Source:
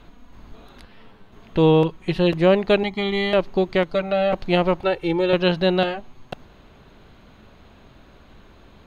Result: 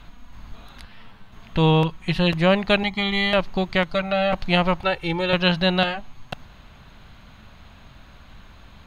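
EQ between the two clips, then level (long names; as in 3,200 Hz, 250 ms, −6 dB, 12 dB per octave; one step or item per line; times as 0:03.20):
parametric band 390 Hz −12.5 dB 1.3 octaves
+4.5 dB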